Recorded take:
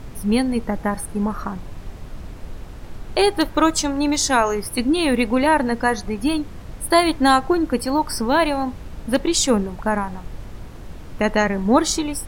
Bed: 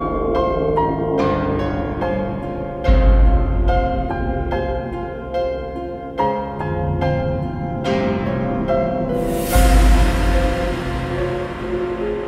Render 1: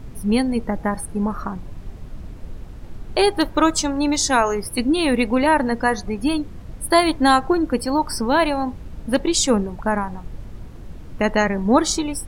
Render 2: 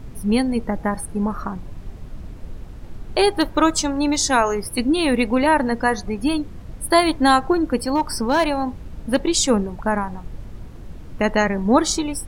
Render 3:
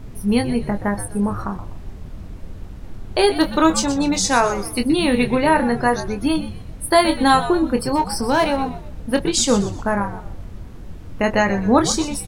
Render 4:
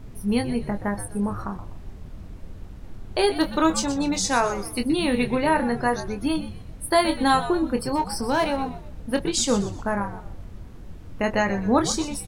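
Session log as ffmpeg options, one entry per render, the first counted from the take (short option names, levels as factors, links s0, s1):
-af "afftdn=nr=6:nf=-37"
-filter_complex "[0:a]asettb=1/sr,asplit=3[s0][s1][s2];[s0]atrim=end=7.864[s3];[s1]atrim=start=7.86:end=8.45,asetpts=PTS-STARTPTS,afade=t=in:d=0.004:c=qsin,afade=t=out:st=0.586:d=0.004:c=qsin,asoftclip=type=hard:threshold=0.251[s4];[s2]atrim=start=8.446[s5];[s3][s4]acrossfade=d=0.004:c1=hsin:c2=qsin[s6];[s6][s5]acrossfade=d=0.004:c1=qsin:c2=hsin"
-filter_complex "[0:a]asplit=2[s0][s1];[s1]adelay=25,volume=0.422[s2];[s0][s2]amix=inputs=2:normalize=0,asplit=5[s3][s4][s5][s6][s7];[s4]adelay=124,afreqshift=-100,volume=0.237[s8];[s5]adelay=248,afreqshift=-200,volume=0.0832[s9];[s6]adelay=372,afreqshift=-300,volume=0.0292[s10];[s7]adelay=496,afreqshift=-400,volume=0.0101[s11];[s3][s8][s9][s10][s11]amix=inputs=5:normalize=0"
-af "volume=0.562"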